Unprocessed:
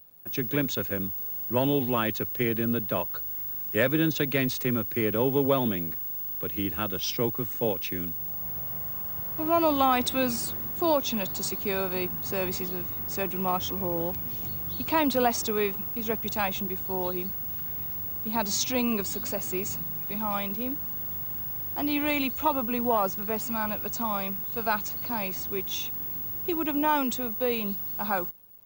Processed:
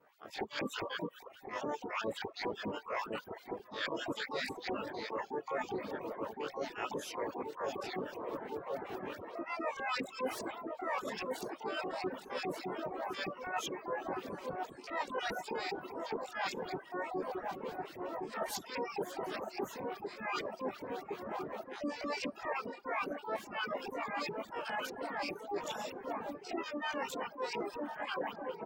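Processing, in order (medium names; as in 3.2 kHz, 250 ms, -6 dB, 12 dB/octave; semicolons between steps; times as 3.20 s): short-time spectra conjugated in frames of 55 ms; on a send at -10 dB: reverberation RT60 1.6 s, pre-delay 38 ms; on the sum: LFO band-pass saw up 4.9 Hz 350–2500 Hz; harmony voices -5 st -12 dB, -3 st -12 dB, +12 st -2 dB; reverb removal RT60 0.61 s; feedback echo behind a low-pass 1062 ms, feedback 80%, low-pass 870 Hz, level -10 dB; reverse; compression 8:1, threshold -45 dBFS, peak gain reduction 20 dB; reverse; reverb removal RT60 0.77 s; trim +10.5 dB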